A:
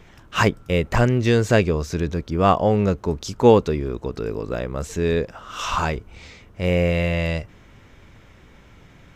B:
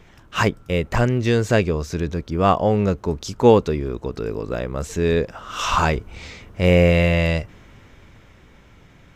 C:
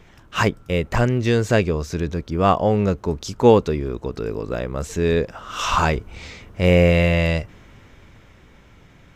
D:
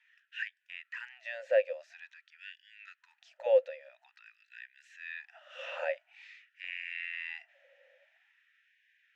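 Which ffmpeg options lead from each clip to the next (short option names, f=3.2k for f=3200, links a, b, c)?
-af "dynaudnorm=f=210:g=21:m=11.5dB,volume=-1dB"
-af anull
-filter_complex "[0:a]acrossover=split=2900[a][b];[b]acompressor=threshold=-38dB:ratio=4:attack=1:release=60[c];[a][c]amix=inputs=2:normalize=0,asplit=3[d][e][f];[d]bandpass=f=530:t=q:w=8,volume=0dB[g];[e]bandpass=f=1.84k:t=q:w=8,volume=-6dB[h];[f]bandpass=f=2.48k:t=q:w=8,volume=-9dB[i];[g][h][i]amix=inputs=3:normalize=0,afftfilt=real='re*gte(b*sr/1024,480*pow(1500/480,0.5+0.5*sin(2*PI*0.48*pts/sr)))':imag='im*gte(b*sr/1024,480*pow(1500/480,0.5+0.5*sin(2*PI*0.48*pts/sr)))':win_size=1024:overlap=0.75"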